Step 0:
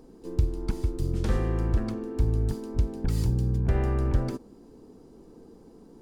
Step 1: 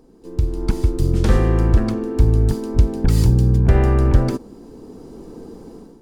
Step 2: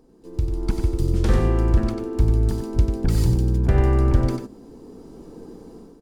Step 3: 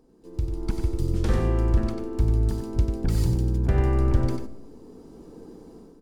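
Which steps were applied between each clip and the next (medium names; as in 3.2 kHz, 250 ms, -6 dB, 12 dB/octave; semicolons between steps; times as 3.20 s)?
level rider gain up to 13.5 dB
delay 94 ms -7 dB; trim -4.5 dB
reverberation RT60 1.0 s, pre-delay 10 ms, DRR 16 dB; trim -4 dB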